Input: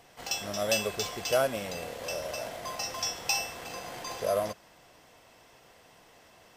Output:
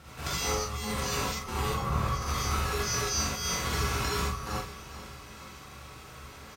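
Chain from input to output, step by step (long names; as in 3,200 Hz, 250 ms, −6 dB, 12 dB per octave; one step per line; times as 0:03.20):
0:01.67–0:02.21: tilt shelving filter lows +5.5 dB, about 1,400 Hz
compressor whose output falls as the input rises −38 dBFS, ratio −1
ring modulation 630 Hz
high-pass filter 59 Hz
low-shelf EQ 150 Hz +7.5 dB
double-tracking delay 42 ms −7 dB
repeating echo 434 ms, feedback 53%, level −15 dB
reverb whose tail is shaped and stops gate 100 ms rising, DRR −6 dB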